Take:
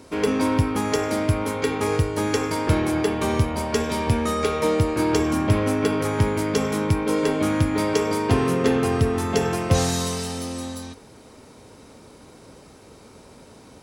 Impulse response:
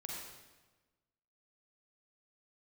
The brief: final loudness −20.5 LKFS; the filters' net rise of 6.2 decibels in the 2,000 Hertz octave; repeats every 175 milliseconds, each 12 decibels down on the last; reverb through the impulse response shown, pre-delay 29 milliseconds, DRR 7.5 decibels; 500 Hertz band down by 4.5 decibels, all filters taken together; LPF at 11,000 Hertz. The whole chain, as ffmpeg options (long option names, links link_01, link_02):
-filter_complex "[0:a]lowpass=11000,equalizer=frequency=500:width_type=o:gain=-6,equalizer=frequency=2000:width_type=o:gain=8,aecho=1:1:175|350|525:0.251|0.0628|0.0157,asplit=2[link_01][link_02];[1:a]atrim=start_sample=2205,adelay=29[link_03];[link_02][link_03]afir=irnorm=-1:irlink=0,volume=-6.5dB[link_04];[link_01][link_04]amix=inputs=2:normalize=0,volume=2dB"